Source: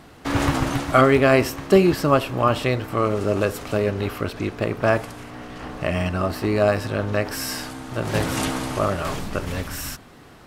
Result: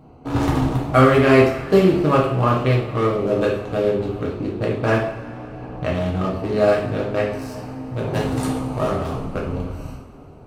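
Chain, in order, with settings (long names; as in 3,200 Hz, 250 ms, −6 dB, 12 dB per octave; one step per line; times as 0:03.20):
adaptive Wiener filter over 25 samples
coupled-rooms reverb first 0.54 s, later 3.5 s, from −19 dB, DRR −3.5 dB
level −2.5 dB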